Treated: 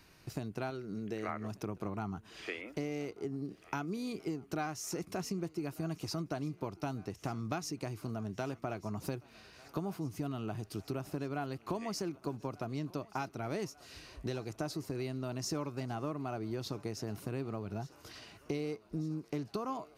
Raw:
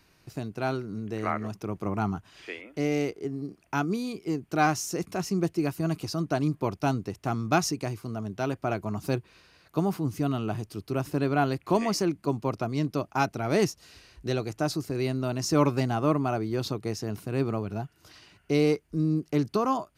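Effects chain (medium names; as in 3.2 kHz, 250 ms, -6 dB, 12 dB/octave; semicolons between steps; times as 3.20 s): 0.70–1.29 s: fifteen-band graphic EQ 100 Hz -9 dB, 250 Hz -4 dB, 1 kHz -7 dB, 10 kHz -4 dB; compression 6:1, threshold -36 dBFS, peak gain reduction 18.5 dB; thinning echo 1192 ms, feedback 78%, high-pass 320 Hz, level -21 dB; trim +1 dB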